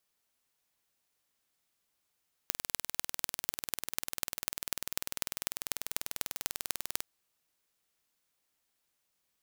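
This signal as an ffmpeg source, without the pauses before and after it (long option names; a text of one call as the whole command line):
ffmpeg -f lavfi -i "aevalsrc='0.794*eq(mod(n,2183),0)*(0.5+0.5*eq(mod(n,10915),0))':duration=4.55:sample_rate=44100" out.wav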